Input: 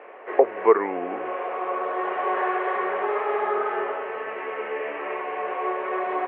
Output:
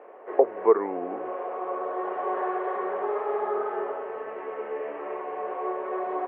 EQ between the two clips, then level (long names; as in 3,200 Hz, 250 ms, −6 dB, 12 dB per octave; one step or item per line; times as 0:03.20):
low-shelf EQ 220 Hz −4 dB
parametric band 2,500 Hz −14.5 dB 1.8 octaves
0.0 dB